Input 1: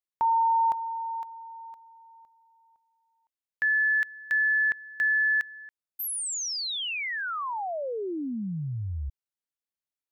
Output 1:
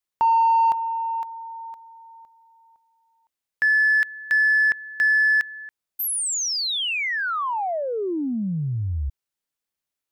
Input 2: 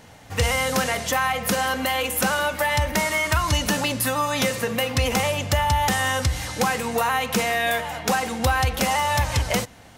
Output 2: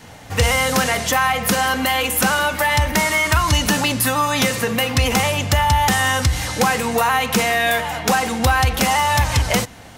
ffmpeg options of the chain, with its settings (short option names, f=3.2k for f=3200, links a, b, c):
-filter_complex "[0:a]adynamicequalizer=threshold=0.01:dfrequency=550:dqfactor=3.8:tfrequency=550:tqfactor=3.8:attack=5:release=100:ratio=0.375:range=2.5:mode=cutabove:tftype=bell,asplit=2[a][b];[b]asoftclip=type=tanh:threshold=-28dB,volume=-8dB[c];[a][c]amix=inputs=2:normalize=0,volume=4dB"